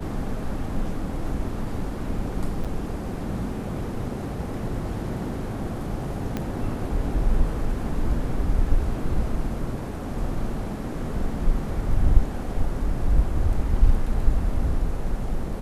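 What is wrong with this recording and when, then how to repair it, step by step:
2.64–2.65 s: dropout 6.8 ms
6.37 s: pop -14 dBFS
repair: de-click; interpolate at 2.64 s, 6.8 ms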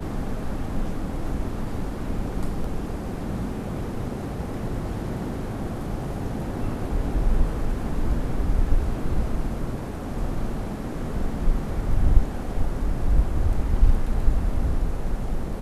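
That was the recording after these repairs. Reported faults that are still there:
6.37 s: pop

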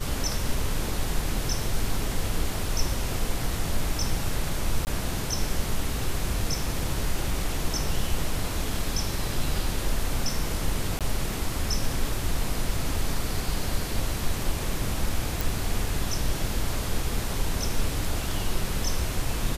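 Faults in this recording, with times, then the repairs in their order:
4.85–4.87 s: dropout 19 ms
10.99–11.01 s: dropout 17 ms
15.41 s: pop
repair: de-click; interpolate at 4.85 s, 19 ms; interpolate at 10.99 s, 17 ms

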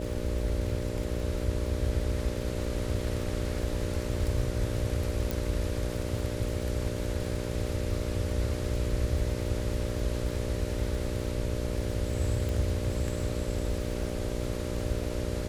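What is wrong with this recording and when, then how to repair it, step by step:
buzz 60 Hz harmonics 10 -35 dBFS
crackle 47 per s -36 dBFS
5.31 s: pop
12.49 s: pop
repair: de-click; de-hum 60 Hz, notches 10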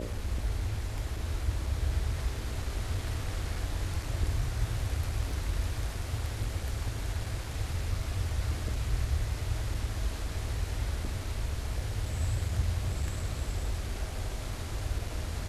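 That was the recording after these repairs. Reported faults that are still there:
5.31 s: pop

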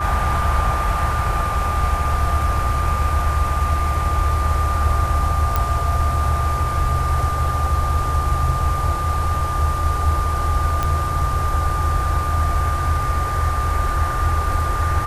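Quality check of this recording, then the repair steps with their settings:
whine 1.2 kHz -23 dBFS
5.56 s: pop
10.83 s: pop -8 dBFS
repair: de-click; band-stop 1.2 kHz, Q 30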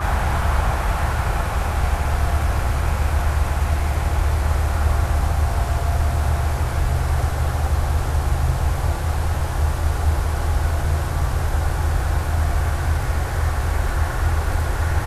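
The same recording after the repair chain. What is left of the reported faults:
nothing left

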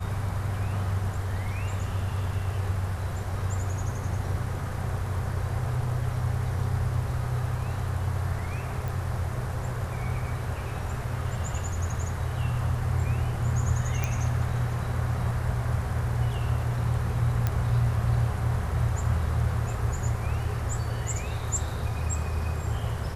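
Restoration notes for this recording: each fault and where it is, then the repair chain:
8.88 s: pop
14.04 s: pop
17.47 s: pop -13 dBFS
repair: de-click

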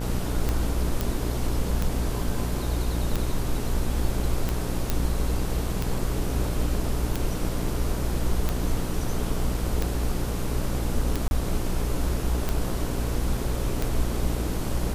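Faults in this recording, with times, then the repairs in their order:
buzz 60 Hz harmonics 26 -29 dBFS
tick 45 rpm
1.01 s: pop
4.90 s: pop
11.28–11.31 s: dropout 31 ms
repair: de-click; de-hum 60 Hz, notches 26; interpolate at 11.28 s, 31 ms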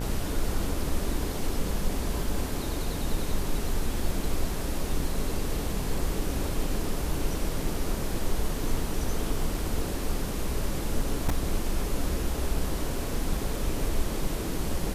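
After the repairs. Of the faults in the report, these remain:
nothing left

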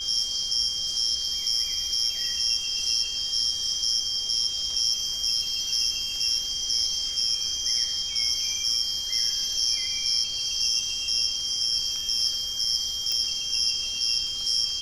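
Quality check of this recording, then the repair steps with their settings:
whine 3.2 kHz -31 dBFS
13.12 s: pop -13 dBFS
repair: de-click; band-stop 3.2 kHz, Q 30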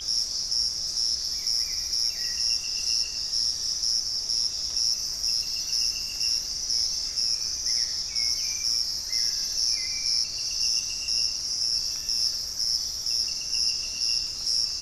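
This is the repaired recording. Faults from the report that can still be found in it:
nothing left

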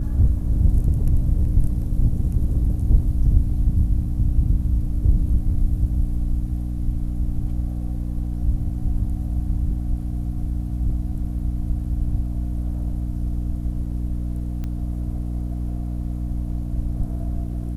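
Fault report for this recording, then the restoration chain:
hum 60 Hz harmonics 5 -26 dBFS
14.64 s: pop -19 dBFS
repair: de-click; de-hum 60 Hz, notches 5

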